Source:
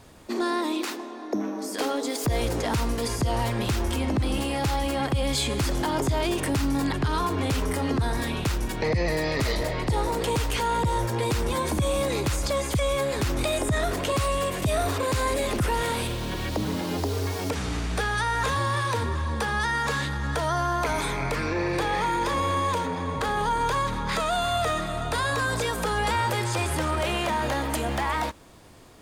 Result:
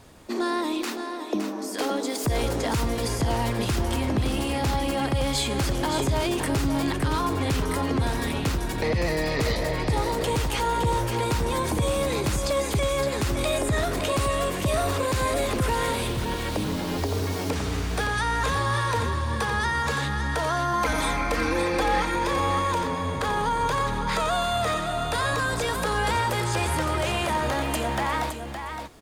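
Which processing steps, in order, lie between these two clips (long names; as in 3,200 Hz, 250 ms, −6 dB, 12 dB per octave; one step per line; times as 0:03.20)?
0:20.73–0:22.16: comb filter 3.8 ms, depth 79%
on a send: single-tap delay 565 ms −7.5 dB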